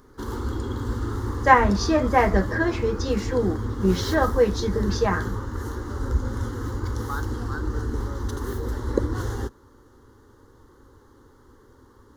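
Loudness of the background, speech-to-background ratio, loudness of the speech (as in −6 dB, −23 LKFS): −29.5 LKFS, 6.5 dB, −23.0 LKFS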